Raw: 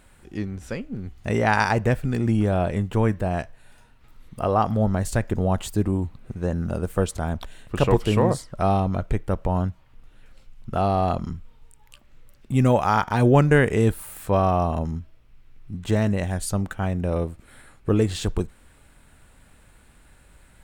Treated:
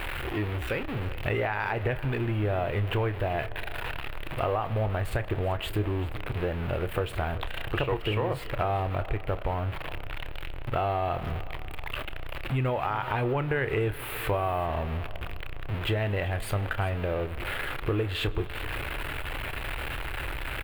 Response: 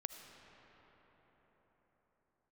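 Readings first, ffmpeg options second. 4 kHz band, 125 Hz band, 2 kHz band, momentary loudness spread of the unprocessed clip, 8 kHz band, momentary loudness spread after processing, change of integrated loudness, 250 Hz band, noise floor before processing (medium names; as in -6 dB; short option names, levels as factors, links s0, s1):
+1.5 dB, -6.0 dB, -1.5 dB, 13 LU, -11.5 dB, 8 LU, -7.5 dB, -11.0 dB, -54 dBFS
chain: -filter_complex "[0:a]aeval=exprs='val(0)+0.5*0.0376*sgn(val(0))':c=same,firequalizer=gain_entry='entry(130,0);entry(190,-13);entry(330,1);entry(2700,7);entry(5900,-21);entry(12000,-7)':delay=0.05:min_phase=1,alimiter=limit=0.335:level=0:latency=1:release=126,acompressor=threshold=0.0501:ratio=4,aecho=1:1:387:0.126,asplit=2[s0][s1];[1:a]atrim=start_sample=2205,adelay=29[s2];[s1][s2]afir=irnorm=-1:irlink=0,volume=0.316[s3];[s0][s3]amix=inputs=2:normalize=0"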